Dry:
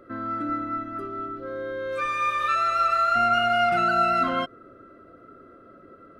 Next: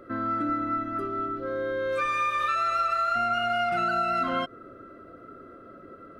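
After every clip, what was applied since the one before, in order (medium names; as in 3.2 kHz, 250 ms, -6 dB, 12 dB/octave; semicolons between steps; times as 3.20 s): compression, threshold -26 dBFS, peak gain reduction 9 dB; trim +2.5 dB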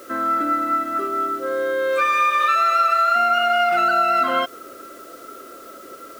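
high-pass 380 Hz 12 dB/octave; in parallel at -6 dB: word length cut 8-bit, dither triangular; on the sum: trim +5 dB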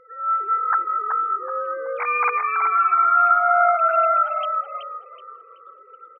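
formants replaced by sine waves; frequency-shifting echo 376 ms, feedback 32%, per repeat -49 Hz, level -5 dB; trim -2 dB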